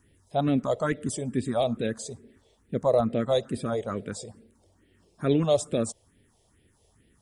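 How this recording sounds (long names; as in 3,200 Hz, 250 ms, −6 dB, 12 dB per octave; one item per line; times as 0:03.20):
phaser sweep stages 4, 2.3 Hz, lowest notch 240–1,100 Hz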